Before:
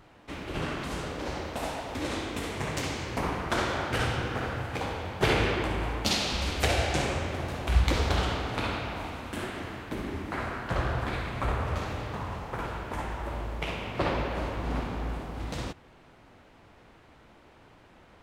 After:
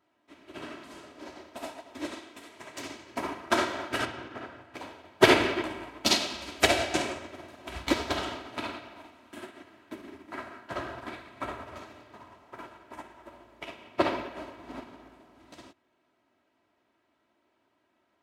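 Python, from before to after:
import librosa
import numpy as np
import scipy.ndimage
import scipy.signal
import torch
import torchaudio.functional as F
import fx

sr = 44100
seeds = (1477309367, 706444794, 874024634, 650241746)

y = fx.low_shelf(x, sr, hz=380.0, db=-6.0, at=(2.14, 2.8))
y = fx.high_shelf(y, sr, hz=6200.0, db=-11.5, at=(4.05, 4.74))
y = scipy.signal.sosfilt(scipy.signal.butter(2, 170.0, 'highpass', fs=sr, output='sos'), y)
y = y + 0.58 * np.pad(y, (int(3.1 * sr / 1000.0), 0))[:len(y)]
y = fx.upward_expand(y, sr, threshold_db=-38.0, expansion=2.5)
y = F.gain(torch.from_numpy(y), 8.5).numpy()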